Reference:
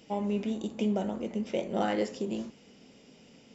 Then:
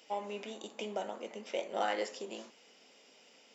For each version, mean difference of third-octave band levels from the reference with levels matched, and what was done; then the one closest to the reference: 6.5 dB: high-pass 610 Hz 12 dB/octave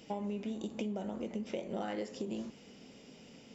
3.5 dB: compression, threshold -36 dBFS, peak gain reduction 11.5 dB; trim +1 dB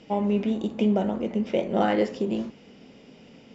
1.5 dB: Bessel low-pass 3.4 kHz, order 2; trim +6.5 dB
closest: third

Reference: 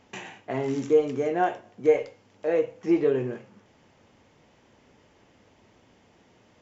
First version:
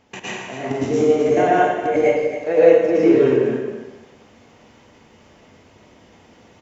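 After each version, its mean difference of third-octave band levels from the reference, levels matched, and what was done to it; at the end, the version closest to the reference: 7.0 dB: level held to a coarse grid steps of 13 dB; on a send: delay 270 ms -10.5 dB; on the sum: plate-style reverb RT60 1 s, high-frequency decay 0.95×, pre-delay 95 ms, DRR -8.5 dB; trim +6 dB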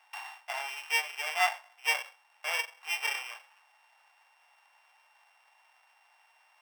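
17.5 dB: sorted samples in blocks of 16 samples; elliptic high-pass 800 Hz, stop band 60 dB; treble shelf 3.3 kHz -12 dB; trim +3.5 dB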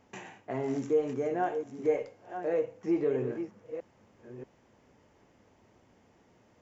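2.0 dB: chunks repeated in reverse 634 ms, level -11 dB; peaking EQ 3.4 kHz -6.5 dB 1.3 oct; in parallel at -2 dB: peak limiter -20.5 dBFS, peak gain reduction 11 dB; on the sum: trim -9 dB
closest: third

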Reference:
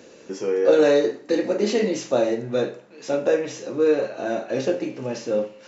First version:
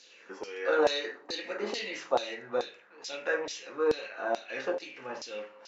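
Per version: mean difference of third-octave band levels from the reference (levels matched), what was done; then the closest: 6.0 dB: band-stop 610 Hz, Q 15; LFO band-pass saw down 2.3 Hz 810–4900 Hz; trim +4.5 dB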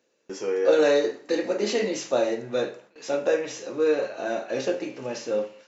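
2.5 dB: gate with hold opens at -36 dBFS; bass shelf 320 Hz -10 dB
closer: second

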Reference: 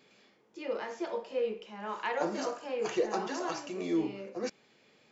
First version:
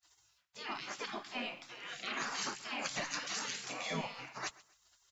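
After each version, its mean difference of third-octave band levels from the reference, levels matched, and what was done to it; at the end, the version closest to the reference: 10.0 dB: gate with hold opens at -55 dBFS; spectral gate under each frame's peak -20 dB weak; in parallel at -1 dB: peak limiter -39.5 dBFS, peak gain reduction 11 dB; on the sum: feedback delay 130 ms, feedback 30%, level -21 dB; trim +4 dB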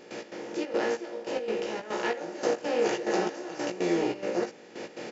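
7.5 dB: spectral levelling over time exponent 0.4; peaking EQ 1.1 kHz -7.5 dB 0.49 oct; trance gate ".x.xxx.xx.." 142 bpm -12 dB; doubling 17 ms -4 dB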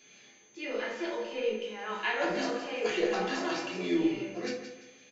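5.0 dB: high-order bell 2.7 kHz +8.5 dB; whistle 6.3 kHz -56 dBFS; on a send: feedback delay 172 ms, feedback 33%, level -10 dB; on the sum: simulated room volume 360 m³, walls furnished, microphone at 3.1 m; trim -5.5 dB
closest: third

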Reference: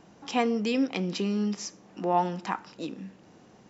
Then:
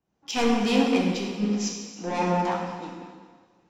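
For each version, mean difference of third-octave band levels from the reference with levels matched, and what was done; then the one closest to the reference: 7.5 dB: tremolo triangle 0.58 Hz, depth 65%; saturation -27 dBFS, distortion -8 dB; plate-style reverb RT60 3.2 s, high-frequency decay 0.95×, DRR -2.5 dB; three bands expanded up and down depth 100%; trim +5.5 dB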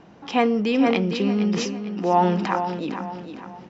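4.5 dB: low-pass 3.7 kHz 12 dB/octave; feedback delay 456 ms, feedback 40%, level -9 dB; decay stretcher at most 38 dB/s; trim +5.5 dB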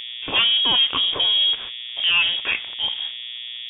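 12.5 dB: peaking EQ 150 Hz -12 dB 0.23 oct; waveshaping leveller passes 3; mains buzz 120 Hz, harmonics 14, -34 dBFS -6 dB/octave; frequency inversion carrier 3.5 kHz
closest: second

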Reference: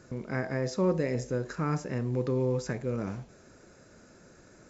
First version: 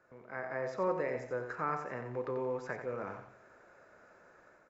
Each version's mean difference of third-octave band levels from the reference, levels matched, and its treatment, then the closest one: 6.0 dB: three-band isolator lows -19 dB, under 550 Hz, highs -21 dB, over 2.1 kHz; level rider gain up to 8 dB; on a send: feedback delay 90 ms, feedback 35%, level -8 dB; on the sum: trim -5.5 dB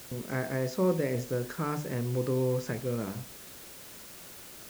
8.5 dB: treble shelf 4.9 kHz -6.5 dB; hum notches 50/100/150/200/250/300 Hz; word length cut 8-bit, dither triangular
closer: first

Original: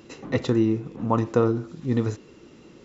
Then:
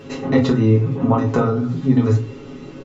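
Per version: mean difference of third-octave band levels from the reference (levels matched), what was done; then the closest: 4.0 dB: treble shelf 5.5 kHz -10.5 dB; comb 7.3 ms, depth 89%; compression, threshold -23 dBFS, peak gain reduction 8.5 dB; simulated room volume 130 m³, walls furnished, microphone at 1.4 m; trim +7.5 dB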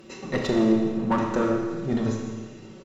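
6.5 dB: comb 5.3 ms, depth 58%; valve stage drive 15 dB, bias 0.65; in parallel at -7.5 dB: hard clipper -30 dBFS, distortion -5 dB; on the sum: Schroeder reverb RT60 1.5 s, combs from 28 ms, DRR 1 dB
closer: first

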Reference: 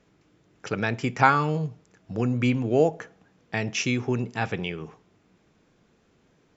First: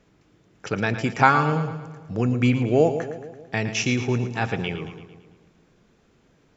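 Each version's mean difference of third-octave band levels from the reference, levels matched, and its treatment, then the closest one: 3.5 dB: bass shelf 62 Hz +5.5 dB; on a send: two-band feedback delay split 730 Hz, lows 148 ms, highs 112 ms, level -10.5 dB; on the sum: trim +2 dB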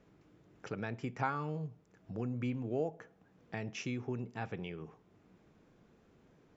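2.5 dB: treble shelf 2 kHz -8.5 dB; compression 1.5:1, threshold -54 dBFS, peak gain reduction 14 dB; trim -1 dB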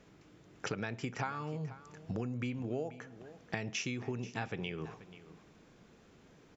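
5.0 dB: compression 10:1, threshold -37 dBFS, peak gain reduction 24.5 dB; on a send: delay 484 ms -16 dB; on the sum: trim +2.5 dB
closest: second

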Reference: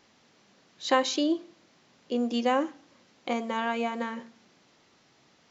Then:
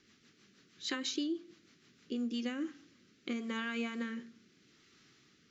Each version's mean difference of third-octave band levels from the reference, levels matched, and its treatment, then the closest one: 4.5 dB: high-order bell 720 Hz -15 dB 1.2 oct; compression 4:1, threshold -32 dBFS, peak gain reduction 8.5 dB; rotary cabinet horn 6.3 Hz, later 0.8 Hz, at 2.00 s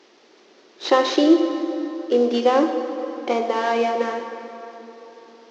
6.0 dB: CVSD coder 32 kbps; resonant high-pass 370 Hz, resonance Q 3.6; plate-style reverb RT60 3.9 s, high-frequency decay 0.6×, DRR 6 dB; trim +5.5 dB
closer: first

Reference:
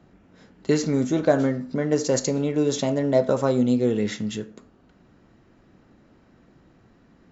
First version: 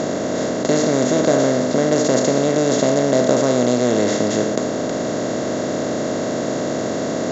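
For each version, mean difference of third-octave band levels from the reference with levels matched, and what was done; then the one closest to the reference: 9.5 dB: spectral levelling over time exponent 0.2; trim -2.5 dB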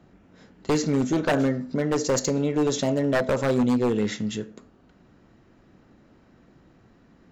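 3.0 dB: wavefolder -15.5 dBFS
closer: second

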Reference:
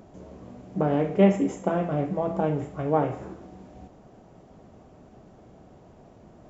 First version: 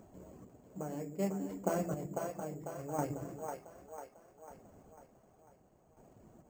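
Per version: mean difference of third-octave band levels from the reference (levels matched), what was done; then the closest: 7.5 dB: reverb removal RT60 0.77 s; square tremolo 0.67 Hz, depth 65%, duty 30%; two-band feedback delay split 420 Hz, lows 118 ms, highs 497 ms, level -4.5 dB; careless resampling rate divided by 6×, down filtered, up hold; trim -7.5 dB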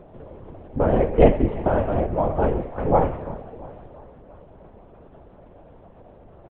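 4.0 dB: high-pass 230 Hz; treble shelf 2.3 kHz -9 dB; on a send: feedback delay 340 ms, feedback 56%, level -17.5 dB; on the sum: LPC vocoder at 8 kHz whisper; trim +6.5 dB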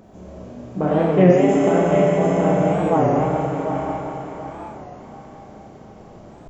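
5.5 dB: on a send: thinning echo 726 ms, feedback 37%, high-pass 460 Hz, level -5 dB; on the sum: Schroeder reverb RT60 3.9 s, combs from 29 ms, DRR -5.5 dB; warped record 33 1/3 rpm, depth 160 cents; trim +1.5 dB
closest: second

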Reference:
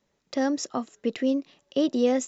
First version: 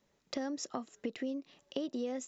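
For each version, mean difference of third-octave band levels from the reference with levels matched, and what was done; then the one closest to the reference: 3.0 dB: compression 6:1, threshold -34 dBFS, peak gain reduction 15 dB; trim -1 dB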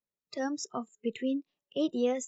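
4.5 dB: spectral noise reduction 21 dB; trim -5 dB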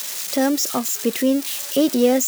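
9.5 dB: zero-crossing glitches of -23 dBFS; trim +6 dB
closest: first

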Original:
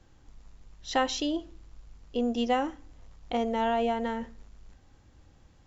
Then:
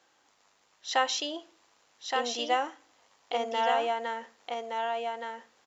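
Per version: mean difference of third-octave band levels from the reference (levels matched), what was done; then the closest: 8.0 dB: high-pass 650 Hz 12 dB/octave; on a send: delay 1170 ms -4 dB; on the sum: trim +2.5 dB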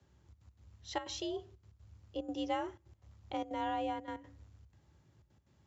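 4.5 dB: trance gate "xxxx.x.xxxxx.xx" 184 bpm -12 dB; frequency shift +53 Hz; trim -9 dB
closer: second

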